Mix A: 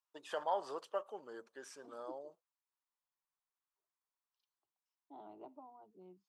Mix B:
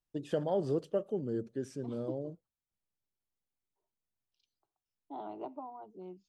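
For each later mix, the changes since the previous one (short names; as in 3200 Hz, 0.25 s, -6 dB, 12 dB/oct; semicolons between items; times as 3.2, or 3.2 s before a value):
first voice: remove resonant high-pass 1000 Hz, resonance Q 3.5; second voice +11.0 dB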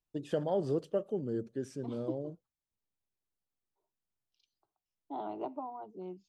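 second voice +3.5 dB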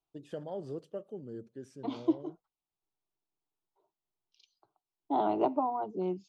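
first voice -8.0 dB; second voice +10.5 dB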